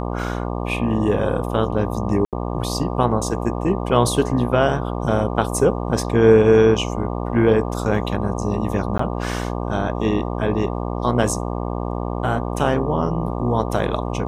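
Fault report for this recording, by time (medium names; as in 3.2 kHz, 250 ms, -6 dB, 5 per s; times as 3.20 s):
buzz 60 Hz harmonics 20 -25 dBFS
2.25–2.33 s: dropout 77 ms
8.98–8.99 s: dropout 14 ms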